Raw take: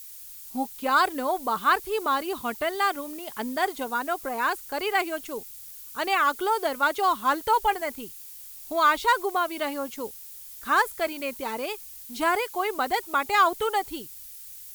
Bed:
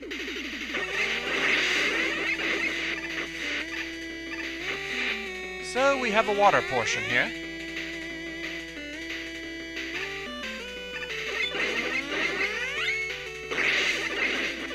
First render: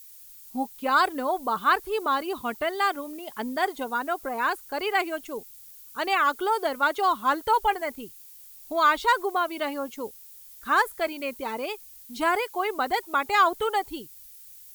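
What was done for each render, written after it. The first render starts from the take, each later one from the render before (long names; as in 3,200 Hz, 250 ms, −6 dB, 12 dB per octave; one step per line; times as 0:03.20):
broadband denoise 6 dB, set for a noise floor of −43 dBFS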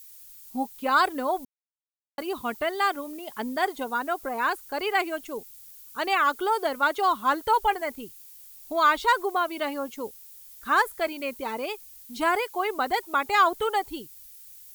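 0:01.45–0:02.18: silence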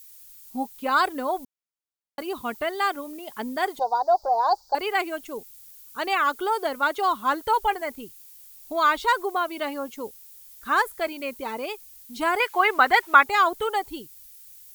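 0:03.79–0:04.75: drawn EQ curve 110 Hz 0 dB, 260 Hz −22 dB, 380 Hz −4 dB, 820 Hz +15 dB, 1,200 Hz −6 dB, 2,600 Hz −29 dB, 4,700 Hz +11 dB, 6,700 Hz −4 dB, 11,000 Hz −25 dB, 16,000 Hz −12 dB
0:12.40–0:13.24: parametric band 1,700 Hz +13 dB 2 octaves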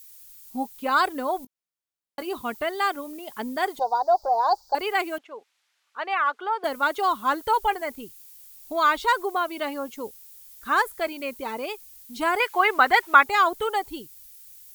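0:01.40–0:02.37: double-tracking delay 20 ms −13 dB
0:05.18–0:06.64: band-pass filter 610–2,400 Hz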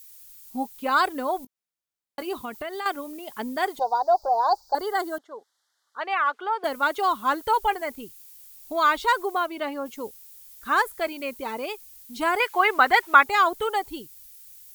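0:02.33–0:02.86: downward compressor, threshold −29 dBFS
0:04.14–0:06.01: Butterworth band-reject 2,500 Hz, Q 1.5
0:09.46–0:09.86: high-shelf EQ 4,100 Hz −7.5 dB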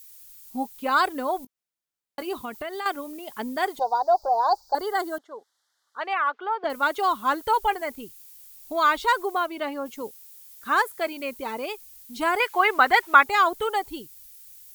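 0:06.13–0:06.70: high-frequency loss of the air 170 metres
0:10.02–0:11.17: high-pass filter 92 Hz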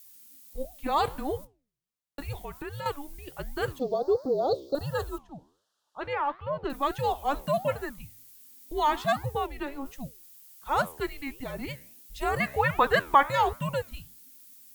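flanger 1.4 Hz, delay 7.1 ms, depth 8.8 ms, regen −86%
frequency shifter −280 Hz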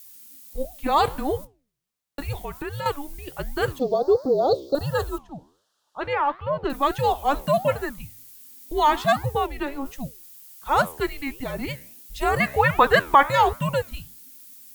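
level +6 dB
brickwall limiter −3 dBFS, peak gain reduction 2.5 dB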